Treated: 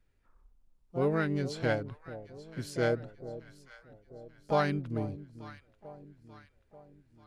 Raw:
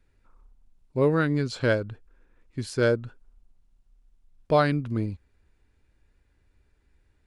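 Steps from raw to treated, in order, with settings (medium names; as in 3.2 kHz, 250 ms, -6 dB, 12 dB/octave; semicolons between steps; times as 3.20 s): echo whose repeats swap between lows and highs 443 ms, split 830 Hz, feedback 67%, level -13.5 dB; harmony voices +5 st -9 dB; trim -7 dB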